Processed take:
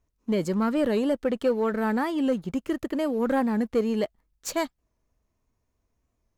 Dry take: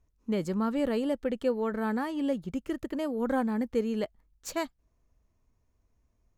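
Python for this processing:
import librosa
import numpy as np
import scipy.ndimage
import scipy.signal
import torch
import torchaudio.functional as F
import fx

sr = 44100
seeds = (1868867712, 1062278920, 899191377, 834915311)

y = fx.leveller(x, sr, passes=1)
y = fx.low_shelf(y, sr, hz=120.0, db=-6.5)
y = fx.record_warp(y, sr, rpm=45.0, depth_cents=100.0)
y = y * librosa.db_to_amplitude(2.5)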